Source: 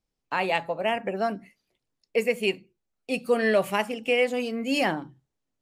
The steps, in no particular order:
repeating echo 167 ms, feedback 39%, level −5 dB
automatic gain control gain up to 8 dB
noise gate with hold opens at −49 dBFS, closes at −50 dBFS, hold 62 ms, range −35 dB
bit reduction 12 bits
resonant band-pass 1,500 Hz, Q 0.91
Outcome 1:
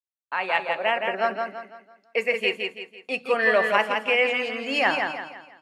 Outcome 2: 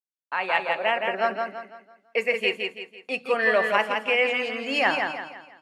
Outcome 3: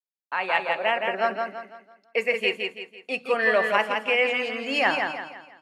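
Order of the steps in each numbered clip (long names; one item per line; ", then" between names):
automatic gain control, then noise gate with hold, then repeating echo, then bit reduction, then resonant band-pass
noise gate with hold, then repeating echo, then automatic gain control, then bit reduction, then resonant band-pass
bit reduction, then repeating echo, then automatic gain control, then noise gate with hold, then resonant band-pass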